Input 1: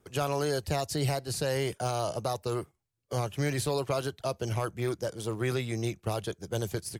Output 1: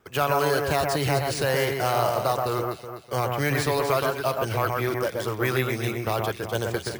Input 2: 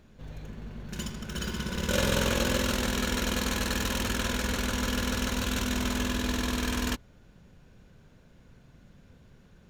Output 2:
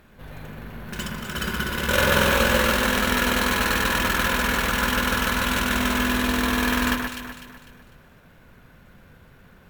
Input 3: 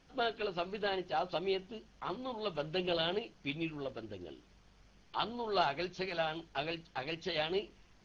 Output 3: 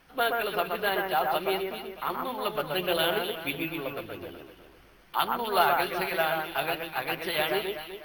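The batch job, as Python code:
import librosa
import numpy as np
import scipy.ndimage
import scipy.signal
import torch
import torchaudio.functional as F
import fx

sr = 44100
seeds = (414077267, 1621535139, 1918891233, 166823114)

p1 = fx.peak_eq(x, sr, hz=1500.0, db=9.5, octaves=2.6)
p2 = p1 + fx.echo_alternate(p1, sr, ms=125, hz=2200.0, feedback_pct=62, wet_db=-3, dry=0)
p3 = np.repeat(p2[::3], 3)[:len(p2)]
y = p3 * 10.0 ** (1.0 / 20.0)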